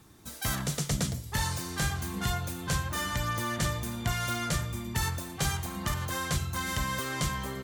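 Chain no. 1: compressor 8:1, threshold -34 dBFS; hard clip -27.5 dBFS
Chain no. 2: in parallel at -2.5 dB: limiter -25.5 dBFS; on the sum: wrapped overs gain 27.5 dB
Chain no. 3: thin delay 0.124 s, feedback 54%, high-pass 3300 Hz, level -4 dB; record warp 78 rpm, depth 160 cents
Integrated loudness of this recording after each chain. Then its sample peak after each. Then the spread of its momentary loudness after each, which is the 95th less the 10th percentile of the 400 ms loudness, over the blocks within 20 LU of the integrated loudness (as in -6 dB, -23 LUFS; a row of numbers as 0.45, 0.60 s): -38.0, -30.5, -31.0 LUFS; -27.5, -27.5, -17.0 dBFS; 1, 2, 2 LU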